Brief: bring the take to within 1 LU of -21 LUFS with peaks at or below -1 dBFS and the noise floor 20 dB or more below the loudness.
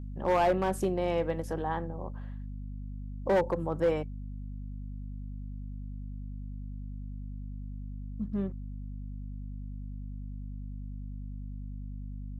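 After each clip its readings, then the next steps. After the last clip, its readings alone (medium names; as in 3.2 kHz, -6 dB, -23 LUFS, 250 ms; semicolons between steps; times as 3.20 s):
clipped samples 0.5%; clipping level -20.0 dBFS; hum 50 Hz; highest harmonic 250 Hz; hum level -37 dBFS; loudness -35.0 LUFS; peak level -20.0 dBFS; loudness target -21.0 LUFS
-> clip repair -20 dBFS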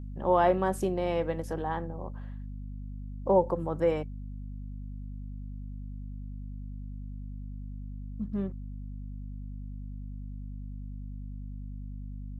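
clipped samples 0.0%; hum 50 Hz; highest harmonic 250 Hz; hum level -37 dBFS
-> hum notches 50/100/150/200/250 Hz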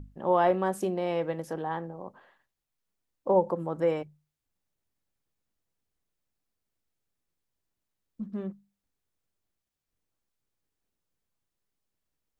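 hum not found; loudness -29.0 LUFS; peak level -12.0 dBFS; loudness target -21.0 LUFS
-> trim +8 dB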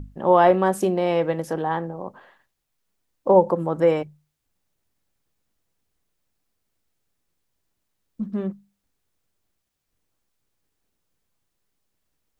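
loudness -21.0 LUFS; peak level -4.0 dBFS; noise floor -78 dBFS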